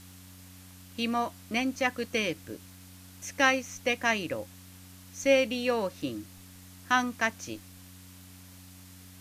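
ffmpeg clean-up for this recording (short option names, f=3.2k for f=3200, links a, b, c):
-af "adeclick=t=4,bandreject=f=92:t=h:w=4,bandreject=f=184:t=h:w=4,bandreject=f=276:t=h:w=4,afwtdn=0.0022"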